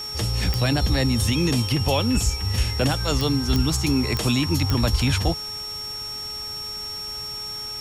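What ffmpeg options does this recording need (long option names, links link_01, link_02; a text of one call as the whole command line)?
ffmpeg -i in.wav -af "adeclick=threshold=4,bandreject=frequency=421.8:width_type=h:width=4,bandreject=frequency=843.6:width_type=h:width=4,bandreject=frequency=1265.4:width_type=h:width=4,bandreject=frequency=5500:width=30,afwtdn=0.0079" out.wav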